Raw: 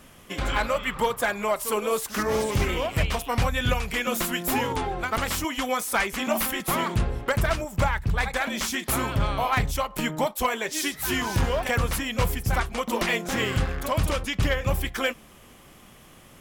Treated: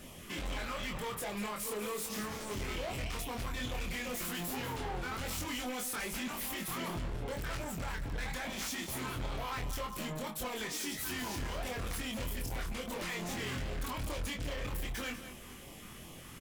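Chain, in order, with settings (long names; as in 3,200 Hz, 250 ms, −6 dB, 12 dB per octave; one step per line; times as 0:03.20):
brickwall limiter −25.5 dBFS, peak gain reduction 10.5 dB
auto-filter notch sine 2.5 Hz 560–1,600 Hz
hard clipping −38 dBFS, distortion −7 dB
double-tracking delay 24 ms −3.5 dB
on a send: single-tap delay 196 ms −11.5 dB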